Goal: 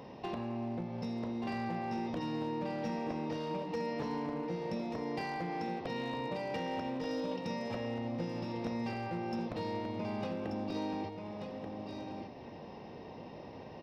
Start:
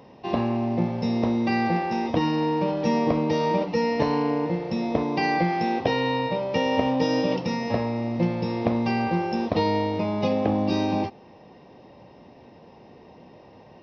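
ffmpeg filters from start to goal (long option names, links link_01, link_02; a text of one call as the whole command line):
ffmpeg -i in.wav -af "acompressor=threshold=-37dB:ratio=5,volume=32dB,asoftclip=hard,volume=-32dB,aecho=1:1:1184:0.531" out.wav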